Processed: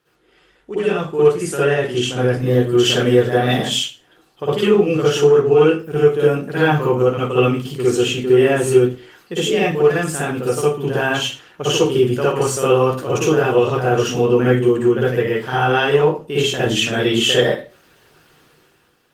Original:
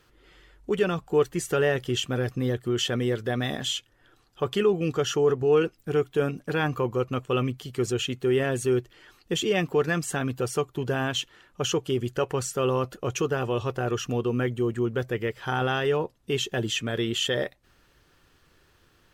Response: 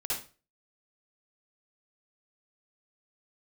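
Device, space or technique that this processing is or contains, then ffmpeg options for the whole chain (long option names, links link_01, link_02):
far-field microphone of a smart speaker: -filter_complex "[0:a]asplit=3[link_01][link_02][link_03];[link_01]afade=type=out:start_time=3.54:duration=0.02[link_04];[link_02]equalizer=frequency=1400:width=1.9:gain=-4,afade=type=in:start_time=3.54:duration=0.02,afade=type=out:start_time=4.49:duration=0.02[link_05];[link_03]afade=type=in:start_time=4.49:duration=0.02[link_06];[link_04][link_05][link_06]amix=inputs=3:normalize=0[link_07];[1:a]atrim=start_sample=2205[link_08];[link_07][link_08]afir=irnorm=-1:irlink=0,highpass=130,dynaudnorm=framelen=140:gausssize=11:maxgain=14dB,volume=-1dB" -ar 48000 -c:a libopus -b:a 24k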